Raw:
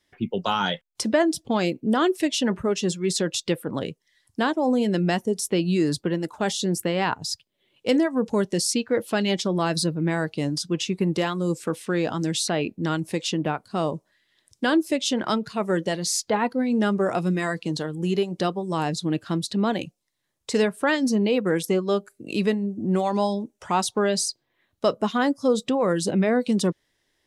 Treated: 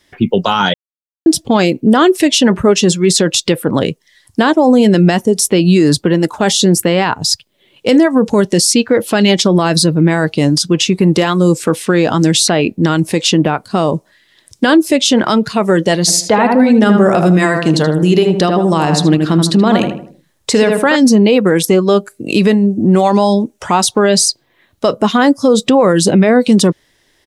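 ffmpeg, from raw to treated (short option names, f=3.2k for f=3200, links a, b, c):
-filter_complex "[0:a]asplit=3[a][b][c];[a]afade=t=out:st=16.07:d=0.02[d];[b]asplit=2[e][f];[f]adelay=78,lowpass=f=1.8k:p=1,volume=-5.5dB,asplit=2[g][h];[h]adelay=78,lowpass=f=1.8k:p=1,volume=0.41,asplit=2[i][j];[j]adelay=78,lowpass=f=1.8k:p=1,volume=0.41,asplit=2[k][l];[l]adelay=78,lowpass=f=1.8k:p=1,volume=0.41,asplit=2[m][n];[n]adelay=78,lowpass=f=1.8k:p=1,volume=0.41[o];[e][g][i][k][m][o]amix=inputs=6:normalize=0,afade=t=in:st=16.07:d=0.02,afade=t=out:st=20.95:d=0.02[p];[c]afade=t=in:st=20.95:d=0.02[q];[d][p][q]amix=inputs=3:normalize=0,asplit=3[r][s][t];[r]atrim=end=0.74,asetpts=PTS-STARTPTS,afade=t=out:st=0.736:d=0.004:c=hsin[u];[s]atrim=start=0.74:end=1.26,asetpts=PTS-STARTPTS,volume=0[v];[t]atrim=start=1.26,asetpts=PTS-STARTPTS,afade=t=in:d=0.004:c=hsin[w];[u][v][w]concat=n=3:v=0:a=1,alimiter=level_in=16.5dB:limit=-1dB:release=50:level=0:latency=1,volume=-1dB"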